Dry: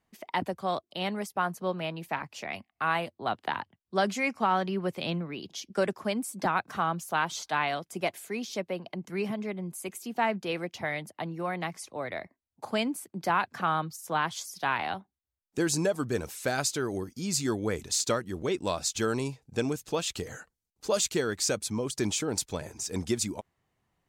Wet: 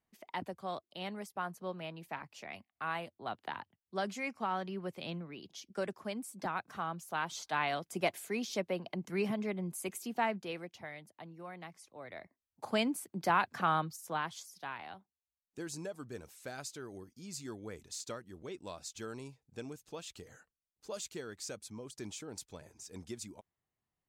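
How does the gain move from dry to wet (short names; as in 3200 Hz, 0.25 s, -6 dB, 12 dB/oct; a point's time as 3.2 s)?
7 s -9.5 dB
7.96 s -2 dB
10.01 s -2 dB
10.93 s -14.5 dB
11.94 s -14.5 dB
12.73 s -2.5 dB
13.77 s -2.5 dB
14.77 s -15 dB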